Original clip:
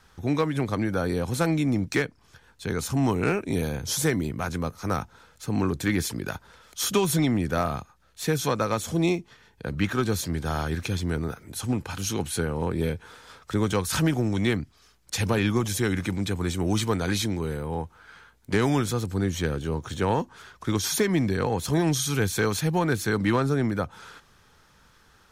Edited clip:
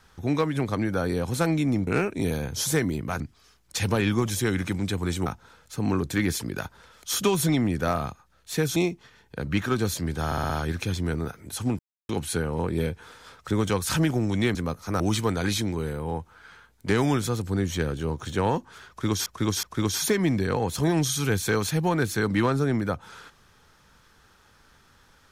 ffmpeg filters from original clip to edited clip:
-filter_complex "[0:a]asplit=15[s0][s1][s2][s3][s4][s5][s6][s7][s8][s9][s10][s11][s12][s13][s14];[s0]atrim=end=1.872[s15];[s1]atrim=start=3.178:end=4.512[s16];[s2]atrim=start=14.578:end=16.642[s17];[s3]atrim=start=4.958:end=8.462[s18];[s4]atrim=start=9.028:end=10.592[s19];[s5]atrim=start=10.528:end=10.592[s20];[s6]atrim=start=10.528:end=10.592[s21];[s7]atrim=start=10.528:end=10.592[s22];[s8]atrim=start=10.528:end=11.82,asetpts=PTS-STARTPTS,afade=t=out:st=1.288:d=0.004:c=hsin[s23];[s9]atrim=start=11.82:end=12.12,asetpts=PTS-STARTPTS,volume=0[s24];[s10]atrim=start=12.12:end=14.582,asetpts=PTS-STARTPTS,afade=t=in:d=0.004:c=hsin[s25];[s11]atrim=start=4.508:end=4.962[s26];[s12]atrim=start=16.638:end=20.902[s27];[s13]atrim=start=20.528:end=20.902[s28];[s14]atrim=start=20.528[s29];[s15][s16]acrossfade=d=0.004:c1=hsin:c2=hsin[s30];[s30][s17]acrossfade=d=0.004:c1=hsin:c2=hsin[s31];[s31][s18]acrossfade=d=0.004:c1=hsin:c2=hsin[s32];[s32][s19]acrossfade=d=0.004:c1=hsin:c2=hsin[s33];[s33][s20]acrossfade=d=0.004:c1=hsin:c2=hsin[s34];[s34][s21]acrossfade=d=0.004:c1=hsin:c2=hsin[s35];[s35][s22]acrossfade=d=0.004:c1=hsin:c2=hsin[s36];[s23][s24][s25]concat=n=3:v=0:a=1[s37];[s36][s37]acrossfade=d=0.004:c1=hsin:c2=hsin[s38];[s38][s26]acrossfade=d=0.004:c1=hsin:c2=hsin[s39];[s39][s27]acrossfade=d=0.004:c1=hsin:c2=hsin[s40];[s40][s28]acrossfade=d=0.004:c1=hsin:c2=hsin[s41];[s41][s29]acrossfade=d=0.004:c1=hsin:c2=hsin"

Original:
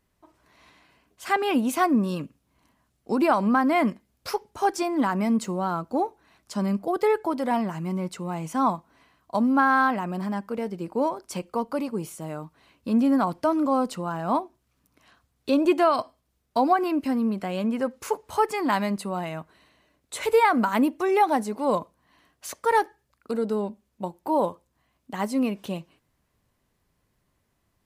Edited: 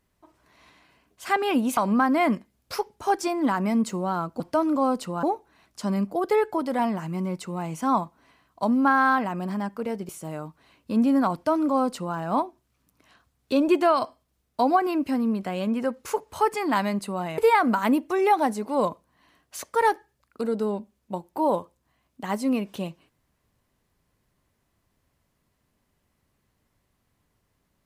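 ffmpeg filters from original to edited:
-filter_complex "[0:a]asplit=6[s0][s1][s2][s3][s4][s5];[s0]atrim=end=1.772[s6];[s1]atrim=start=3.318:end=5.952[s7];[s2]atrim=start=13.298:end=14.132[s8];[s3]atrim=start=5.948:end=10.812[s9];[s4]atrim=start=12.058:end=19.352[s10];[s5]atrim=start=20.278[s11];[s6][s7]acrossfade=d=0.004:c1=hsin:c2=hsin[s12];[s12][s8]acrossfade=d=0.004:c1=hsin:c2=hsin[s13];[s13][s9]acrossfade=d=0.004:c1=hsin:c2=hsin[s14];[s14][s10]acrossfade=d=0.004:c1=hsin:c2=hsin[s15];[s15][s11]acrossfade=d=0.004:c1=hsin:c2=hsin"

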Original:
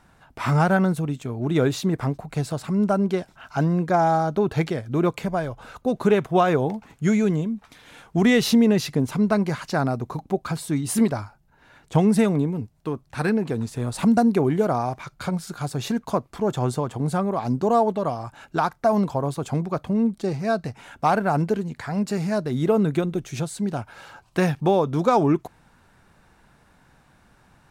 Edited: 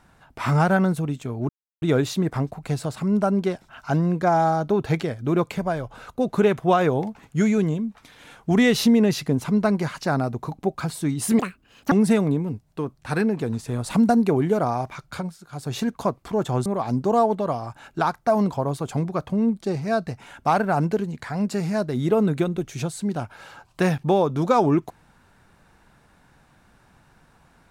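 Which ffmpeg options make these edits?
-filter_complex "[0:a]asplit=7[s0][s1][s2][s3][s4][s5][s6];[s0]atrim=end=1.49,asetpts=PTS-STARTPTS,afade=t=out:st=1.486:d=0.004:c=hsin,apad=pad_dur=0.33[s7];[s1]atrim=start=1.49:end=11.064,asetpts=PTS-STARTPTS,afade=t=in:d=0.004:c=hsin[s8];[s2]atrim=start=11.06:end=12,asetpts=PTS-STARTPTS,asetrate=78498,aresample=44100[s9];[s3]atrim=start=11.996:end=15.45,asetpts=PTS-STARTPTS,afade=t=out:st=3.194:d=0.26:silence=0.237137[s10];[s4]atrim=start=15.45:end=15.56,asetpts=PTS-STARTPTS,volume=0.237[s11];[s5]atrim=start=15.56:end=16.742,asetpts=PTS-STARTPTS,afade=t=in:d=0.26:silence=0.237137[s12];[s6]atrim=start=17.228[s13];[s7][s8]concat=n=2:v=0:a=1[s14];[s14][s9]acrossfade=d=0.004:c1=hsin:c2=hsin[s15];[s10][s11][s12]concat=n=3:v=0:a=1[s16];[s15][s16]acrossfade=d=0.004:c1=hsin:c2=hsin[s17];[s17][s13]acrossfade=d=0.004:c1=hsin:c2=hsin"

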